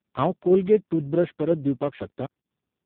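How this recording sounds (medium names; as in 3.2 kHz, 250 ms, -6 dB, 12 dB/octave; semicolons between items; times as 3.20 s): a buzz of ramps at a fixed pitch in blocks of 8 samples; tremolo saw down 2 Hz, depth 35%; AMR-NB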